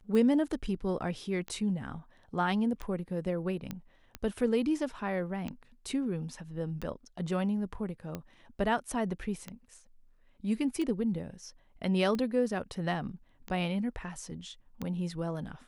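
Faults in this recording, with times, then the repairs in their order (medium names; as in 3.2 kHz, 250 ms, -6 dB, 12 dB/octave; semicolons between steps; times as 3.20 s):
tick 45 rpm -23 dBFS
3.71 s: pop -22 dBFS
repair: de-click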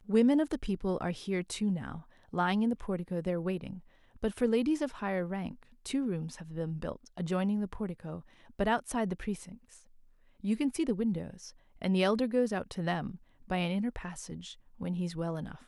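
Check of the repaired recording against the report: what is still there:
nothing left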